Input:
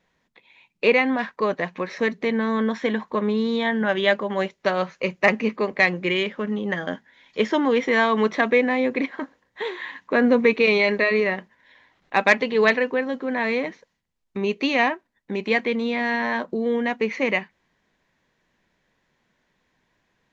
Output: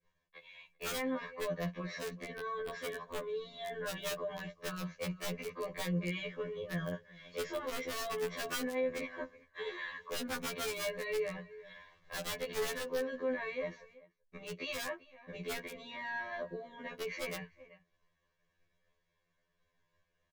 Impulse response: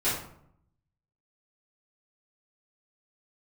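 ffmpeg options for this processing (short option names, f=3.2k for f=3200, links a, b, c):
-filter_complex "[0:a]acrossover=split=190[a][b];[b]acompressor=threshold=-48dB:ratio=1.5[c];[a][c]amix=inputs=2:normalize=0,aecho=1:1:1.8:0.73,agate=range=-33dB:threshold=-59dB:ratio=3:detection=peak,asplit=2[d][e];[e]adelay=384.8,volume=-25dB,highshelf=f=4k:g=-8.66[f];[d][f]amix=inputs=2:normalize=0,aeval=exprs='(mod(10.6*val(0)+1,2)-1)/10.6':c=same,lowshelf=f=61:g=9,alimiter=level_in=5dB:limit=-24dB:level=0:latency=1:release=12,volume=-5dB,afftfilt=real='re*2*eq(mod(b,4),0)':imag='im*2*eq(mod(b,4),0)':win_size=2048:overlap=0.75"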